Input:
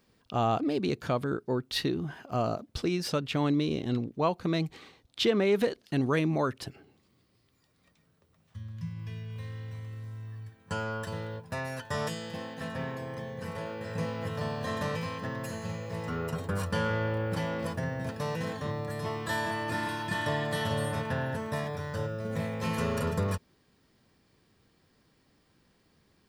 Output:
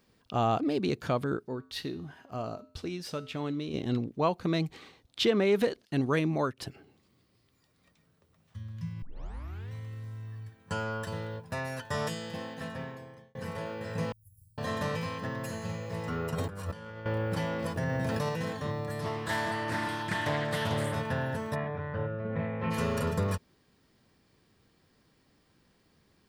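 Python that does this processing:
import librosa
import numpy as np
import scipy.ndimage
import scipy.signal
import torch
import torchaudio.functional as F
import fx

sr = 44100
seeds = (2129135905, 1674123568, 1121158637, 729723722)

y = fx.comb_fb(x, sr, f0_hz=87.0, decay_s=0.47, harmonics='odd', damping=0.0, mix_pct=60, at=(1.47, 3.73), fade=0.02)
y = fx.upward_expand(y, sr, threshold_db=-46.0, expansion=1.5, at=(5.85, 6.58))
y = fx.cheby2_bandstop(y, sr, low_hz=310.0, high_hz=2600.0, order=4, stop_db=80, at=(14.12, 14.58))
y = fx.over_compress(y, sr, threshold_db=-36.0, ratio=-0.5, at=(16.35, 17.06))
y = fx.env_flatten(y, sr, amount_pct=100, at=(17.76, 18.29))
y = fx.doppler_dist(y, sr, depth_ms=0.36, at=(19.01, 20.96))
y = fx.lowpass(y, sr, hz=2500.0, slope=24, at=(21.54, 22.7), fade=0.02)
y = fx.edit(y, sr, fx.tape_start(start_s=9.02, length_s=0.7),
    fx.fade_out_span(start_s=12.51, length_s=0.84), tone=tone)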